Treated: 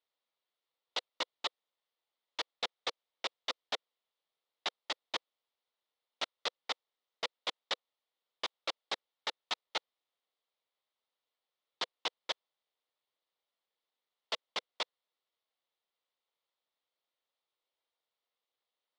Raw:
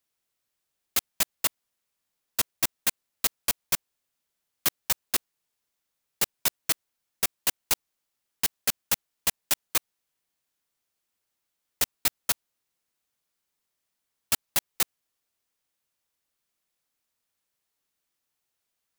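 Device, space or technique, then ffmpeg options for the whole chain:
voice changer toy: -af "aeval=exprs='val(0)*sin(2*PI*1100*n/s+1100*0.8/0.35*sin(2*PI*0.35*n/s))':channel_layout=same,highpass=470,equalizer=frequency=500:width_type=q:width=4:gain=5,equalizer=frequency=1600:width_type=q:width=4:gain=-8,equalizer=frequency=2500:width_type=q:width=4:gain=-6,equalizer=frequency=3600:width_type=q:width=4:gain=3,lowpass=frequency=4000:width=0.5412,lowpass=frequency=4000:width=1.3066,volume=1dB"

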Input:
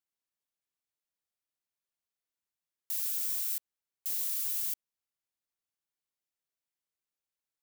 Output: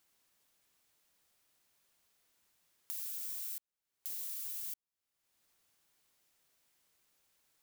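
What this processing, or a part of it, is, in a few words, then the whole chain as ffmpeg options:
de-esser from a sidechain: -filter_complex "[0:a]asplit=2[link_01][link_02];[link_02]highpass=6500,apad=whole_len=336293[link_03];[link_01][link_03]sidechaincompress=threshold=-54dB:ratio=8:attack=1.6:release=390,volume=17dB"

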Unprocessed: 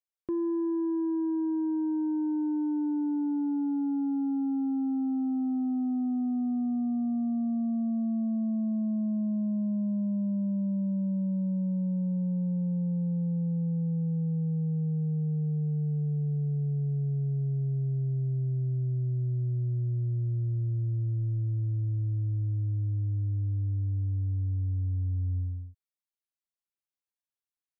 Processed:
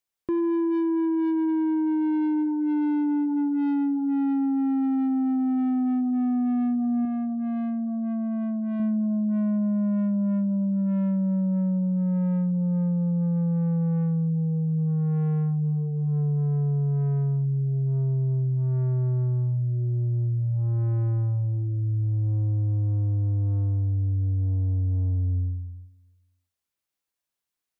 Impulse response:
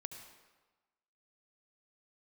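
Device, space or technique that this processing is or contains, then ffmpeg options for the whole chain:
saturated reverb return: -filter_complex "[0:a]asplit=2[link_01][link_02];[1:a]atrim=start_sample=2205[link_03];[link_02][link_03]afir=irnorm=-1:irlink=0,asoftclip=type=tanh:threshold=-38.5dB,volume=2.5dB[link_04];[link_01][link_04]amix=inputs=2:normalize=0,asettb=1/sr,asplit=3[link_05][link_06][link_07];[link_05]atrim=end=7.054[link_08];[link_06]atrim=start=7.05:end=8.8,asetpts=PTS-STARTPTS,afade=type=in:duration=0.004:curve=qsin,afade=type=out:start_time=1.746:duration=0.004:curve=qsin,lowshelf=frequency=380:gain=-5[link_09];[link_07]atrim=start=8.796[link_10];[link_08][link_09]acrossfade=duration=0.004:curve1=hsin:curve2=qsin[link_11];[link_11][link_10]acrossfade=duration=0.004:curve1=qsin:curve2=hsin,volume=2.5dB"

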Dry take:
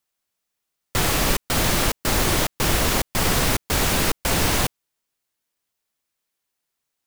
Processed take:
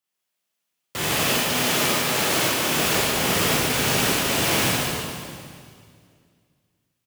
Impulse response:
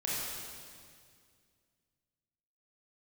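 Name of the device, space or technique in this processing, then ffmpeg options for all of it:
PA in a hall: -filter_complex "[0:a]asettb=1/sr,asplit=3[link_01][link_02][link_03];[link_01]atrim=end=1.174[link_04];[link_02]atrim=start=1.17:end=2.78,asetpts=PTS-STARTPTS,afade=type=in:duration=0.004:curve=qsin,afade=type=out:start_time=1.606:duration=0.004:curve=qsin,highpass=frequency=170:poles=1[link_05];[link_03]atrim=start=2.776[link_06];[link_04][link_05]acrossfade=duration=0.004:curve1=hsin:curve2=qsin[link_07];[link_07][link_06]acrossfade=duration=0.004:curve1=qsin:curve2=hsin,highpass=130,equalizer=frequency=2900:width_type=o:width=0.52:gain=4,aecho=1:1:145:0.501[link_08];[1:a]atrim=start_sample=2205[link_09];[link_08][link_09]afir=irnorm=-1:irlink=0,volume=-6dB"

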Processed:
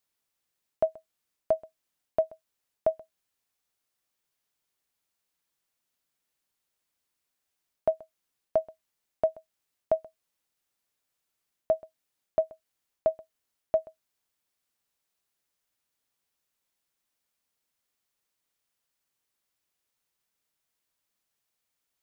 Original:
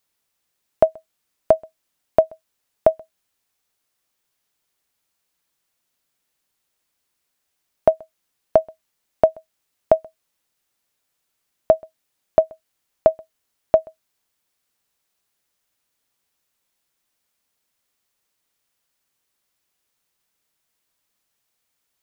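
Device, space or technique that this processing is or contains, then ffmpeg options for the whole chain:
compression on the reversed sound: -af "areverse,acompressor=threshold=-14dB:ratio=6,areverse,volume=-7dB"

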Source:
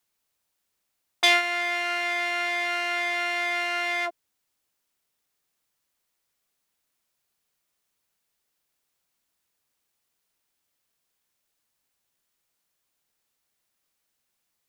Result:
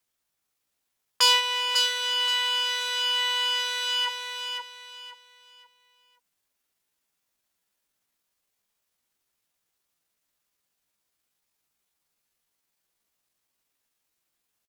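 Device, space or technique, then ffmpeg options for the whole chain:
chipmunk voice: -filter_complex "[0:a]asettb=1/sr,asplit=3[link_01][link_02][link_03];[link_01]atrim=end=3.674[link_04];[link_02]atrim=start=3.67:end=4.08,asetpts=PTS-STARTPTS,afade=type=in:duration=0.004:curve=qsin,afade=type=out:start_time=0.406:duration=0.004:curve=qsin,asubboost=boost=9.5:cutoff=240[link_05];[link_03]atrim=start=4.076[link_06];[link_04][link_05]acrossfade=duration=0.004:curve1=hsin:curve2=qsin[link_07];[link_07][link_06]acrossfade=duration=0.004:curve1=qsin:curve2=hsin,aecho=1:1:526|1052|1578|2104:0.531|0.159|0.0478|0.0143,asetrate=62367,aresample=44100,atempo=0.707107"

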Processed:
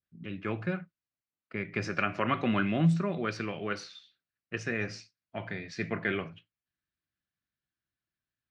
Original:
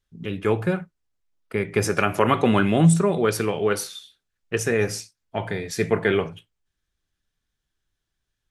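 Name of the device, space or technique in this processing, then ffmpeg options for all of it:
guitar cabinet: -af "highpass=110,equalizer=frequency=440:width_type=q:width=4:gain=-10,equalizer=frequency=870:width_type=q:width=4:gain=-8,equalizer=frequency=3400:width_type=q:width=4:gain=-8,lowpass=frequency=4400:width=0.5412,lowpass=frequency=4400:width=1.3066,adynamicequalizer=threshold=0.0126:dfrequency=1700:dqfactor=0.7:tfrequency=1700:tqfactor=0.7:attack=5:release=100:ratio=0.375:range=2:mode=boostabove:tftype=highshelf,volume=-7.5dB"

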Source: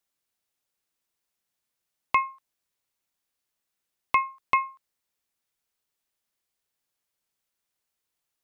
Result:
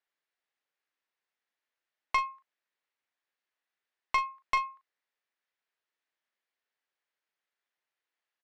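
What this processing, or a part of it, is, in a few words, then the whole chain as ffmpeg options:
intercom: -filter_complex "[0:a]highpass=360,lowpass=3600,equalizer=frequency=1800:width_type=o:width=0.56:gain=6,asoftclip=type=tanh:threshold=-16.5dB,asplit=2[link_01][link_02];[link_02]adelay=39,volume=-10dB[link_03];[link_01][link_03]amix=inputs=2:normalize=0,volume=-3dB"

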